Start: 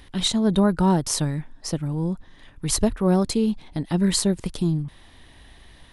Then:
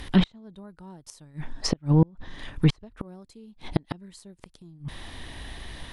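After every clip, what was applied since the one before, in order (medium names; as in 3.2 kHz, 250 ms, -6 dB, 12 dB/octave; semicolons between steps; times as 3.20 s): inverted gate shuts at -17 dBFS, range -35 dB; low-pass that closes with the level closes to 2.5 kHz, closed at -27.5 dBFS; trim +9 dB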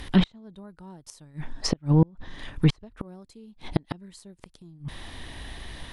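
no audible change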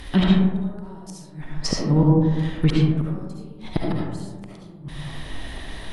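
algorithmic reverb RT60 1.4 s, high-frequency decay 0.3×, pre-delay 30 ms, DRR -3.5 dB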